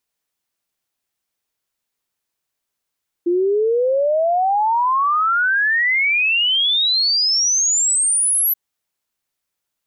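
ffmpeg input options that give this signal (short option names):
-f lavfi -i "aevalsrc='0.2*clip(min(t,5.28-t)/0.01,0,1)*sin(2*PI*340*5.28/log(12000/340)*(exp(log(12000/340)*t/5.28)-1))':d=5.28:s=44100"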